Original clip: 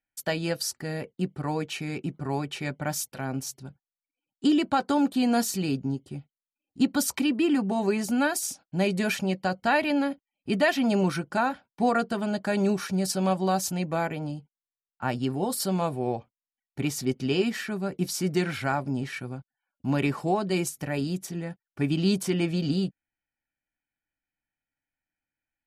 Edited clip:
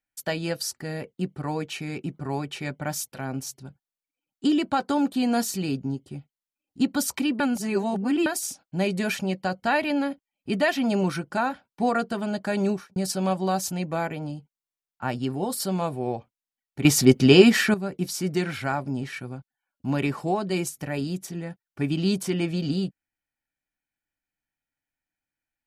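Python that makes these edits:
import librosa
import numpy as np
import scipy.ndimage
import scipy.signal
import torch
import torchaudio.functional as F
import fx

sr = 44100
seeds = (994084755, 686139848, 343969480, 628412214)

y = fx.studio_fade_out(x, sr, start_s=12.67, length_s=0.29)
y = fx.edit(y, sr, fx.reverse_span(start_s=7.4, length_s=0.86),
    fx.clip_gain(start_s=16.85, length_s=0.89, db=11.5), tone=tone)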